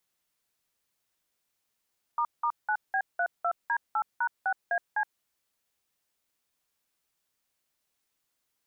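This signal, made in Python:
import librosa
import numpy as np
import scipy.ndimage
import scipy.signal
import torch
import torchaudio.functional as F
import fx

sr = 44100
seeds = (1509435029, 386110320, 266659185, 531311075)

y = fx.dtmf(sr, digits='**9B32D8#6AC', tone_ms=70, gap_ms=183, level_db=-27.0)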